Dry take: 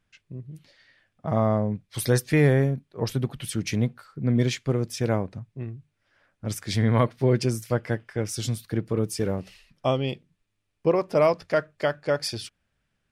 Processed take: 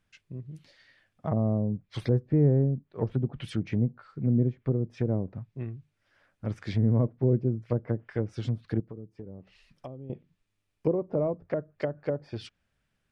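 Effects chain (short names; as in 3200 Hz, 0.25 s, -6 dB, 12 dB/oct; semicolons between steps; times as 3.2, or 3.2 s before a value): treble ducked by the level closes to 410 Hz, closed at -21.5 dBFS; 8.8–10.1 compressor 2.5:1, threshold -45 dBFS, peak gain reduction 16 dB; gain -1.5 dB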